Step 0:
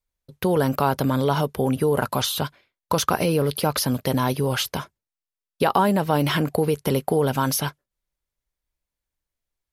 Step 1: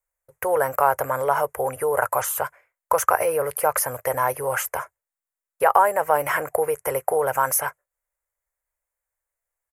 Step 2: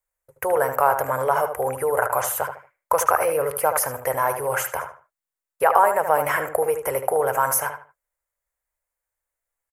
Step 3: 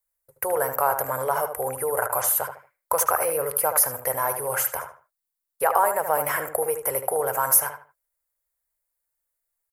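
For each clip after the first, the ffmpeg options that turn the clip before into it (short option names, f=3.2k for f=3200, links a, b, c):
-af "firequalizer=gain_entry='entry(110,0);entry(190,-20);entry(500,12);entry(2000,13);entry(3700,-16);entry(7100,13)':delay=0.05:min_phase=1,volume=-8.5dB"
-filter_complex "[0:a]asplit=2[a][b];[b]adelay=76,lowpass=f=2.9k:p=1,volume=-7.5dB,asplit=2[c][d];[d]adelay=76,lowpass=f=2.9k:p=1,volume=0.28,asplit=2[e][f];[f]adelay=76,lowpass=f=2.9k:p=1,volume=0.28[g];[a][c][e][g]amix=inputs=4:normalize=0"
-af "aexciter=amount=2.4:drive=2.6:freq=3.8k,volume=-4dB"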